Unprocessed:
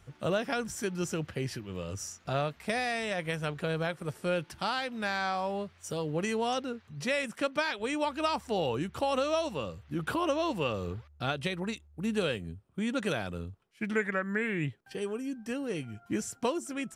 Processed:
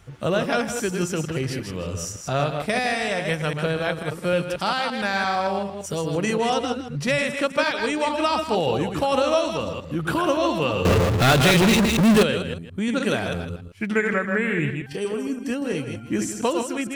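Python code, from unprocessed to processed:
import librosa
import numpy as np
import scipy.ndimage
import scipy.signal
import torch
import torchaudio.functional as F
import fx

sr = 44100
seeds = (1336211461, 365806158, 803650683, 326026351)

y = fx.reverse_delay(x, sr, ms=114, wet_db=-5.0)
y = fx.low_shelf(y, sr, hz=130.0, db=10.0, at=(6.62, 7.22))
y = y + 10.0 ** (-11.0 / 20.0) * np.pad(y, (int(159 * sr / 1000.0), 0))[:len(y)]
y = fx.power_curve(y, sr, exponent=0.35, at=(10.85, 12.23))
y = F.gain(torch.from_numpy(y), 7.0).numpy()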